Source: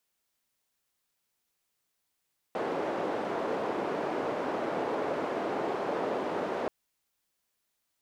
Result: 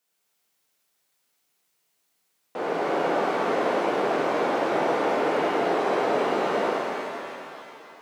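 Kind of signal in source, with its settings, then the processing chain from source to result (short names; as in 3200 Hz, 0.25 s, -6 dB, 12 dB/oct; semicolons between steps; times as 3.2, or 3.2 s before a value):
noise band 380–530 Hz, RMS -32 dBFS 4.13 s
HPF 130 Hz 12 dB/oct; shimmer reverb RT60 2.8 s, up +7 st, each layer -8 dB, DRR -6.5 dB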